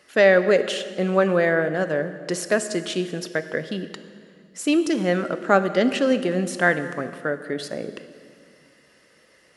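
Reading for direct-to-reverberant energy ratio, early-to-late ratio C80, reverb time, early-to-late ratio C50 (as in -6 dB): 11.0 dB, 13.0 dB, 2.2 s, 12.0 dB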